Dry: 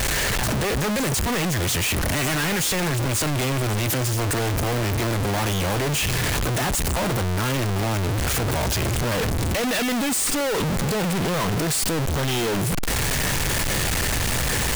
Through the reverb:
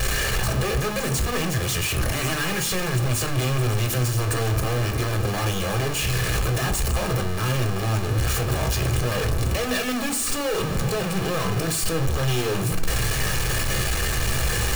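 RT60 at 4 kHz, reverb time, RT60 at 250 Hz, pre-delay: 0.40 s, 0.55 s, 0.75 s, 3 ms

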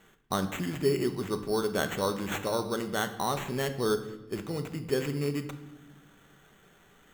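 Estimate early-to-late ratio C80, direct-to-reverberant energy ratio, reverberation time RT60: 14.0 dB, 7.5 dB, 1.0 s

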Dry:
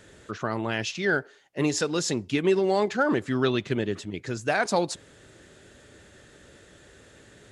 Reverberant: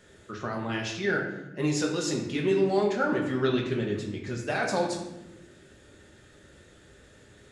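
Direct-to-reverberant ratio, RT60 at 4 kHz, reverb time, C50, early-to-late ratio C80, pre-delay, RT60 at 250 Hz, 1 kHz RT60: -1.0 dB, 0.65 s, 1.0 s, 5.0 dB, 7.0 dB, 5 ms, 1.7 s, 0.85 s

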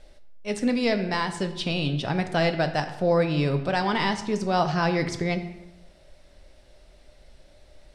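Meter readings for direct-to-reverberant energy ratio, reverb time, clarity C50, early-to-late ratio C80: 7.5 dB, 0.95 s, 11.0 dB, 12.5 dB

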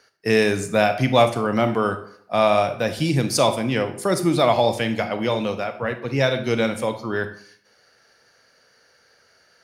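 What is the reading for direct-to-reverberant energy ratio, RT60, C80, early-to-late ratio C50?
8.0 dB, 0.60 s, 15.0 dB, 11.0 dB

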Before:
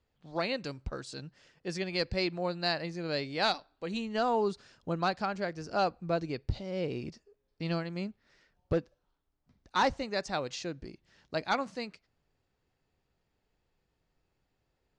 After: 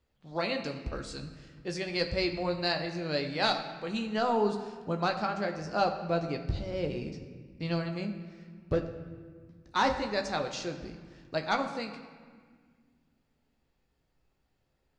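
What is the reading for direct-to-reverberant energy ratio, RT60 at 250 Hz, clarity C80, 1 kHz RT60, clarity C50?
4.0 dB, 2.8 s, 10.0 dB, 1.7 s, 8.5 dB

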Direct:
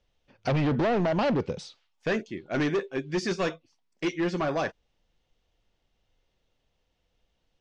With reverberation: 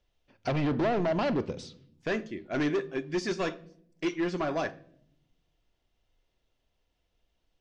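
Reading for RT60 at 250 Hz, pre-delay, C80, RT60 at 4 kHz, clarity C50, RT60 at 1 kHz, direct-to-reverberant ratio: 1.2 s, 3 ms, 22.5 dB, 0.50 s, 19.5 dB, 0.55 s, 11.5 dB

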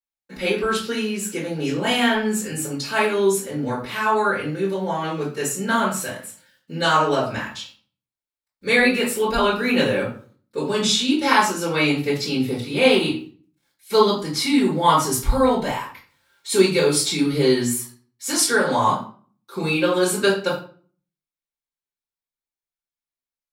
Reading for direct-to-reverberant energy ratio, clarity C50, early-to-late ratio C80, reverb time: -13.0 dB, 6.0 dB, 11.0 dB, 0.45 s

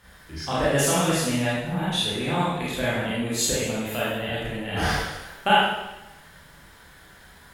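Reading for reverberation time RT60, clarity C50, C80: 1.0 s, -2.5 dB, 1.5 dB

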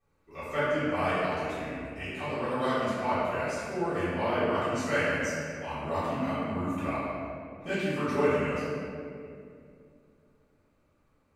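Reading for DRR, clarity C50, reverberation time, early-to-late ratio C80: -16.5 dB, -4.0 dB, 2.5 s, -1.5 dB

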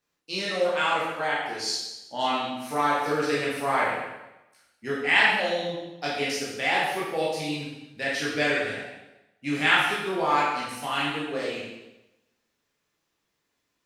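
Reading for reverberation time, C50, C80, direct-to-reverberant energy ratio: 1.0 s, 0.0 dB, 3.0 dB, -7.0 dB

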